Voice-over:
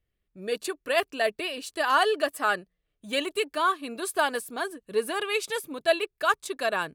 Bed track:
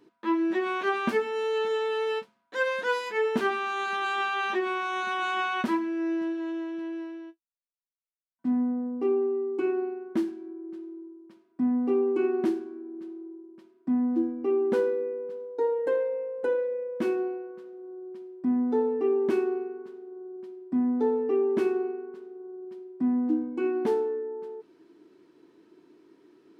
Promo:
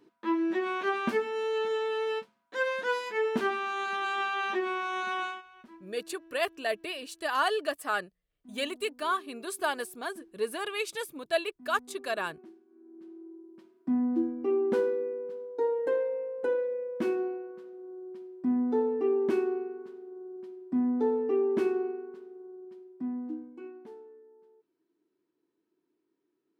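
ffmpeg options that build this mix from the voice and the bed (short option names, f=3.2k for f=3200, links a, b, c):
-filter_complex "[0:a]adelay=5450,volume=-5dB[a];[1:a]volume=21dB,afade=t=out:st=5.19:d=0.23:silence=0.0707946,afade=t=in:st=12.67:d=0.91:silence=0.0668344,afade=t=out:st=21.91:d=1.92:silence=0.1[b];[a][b]amix=inputs=2:normalize=0"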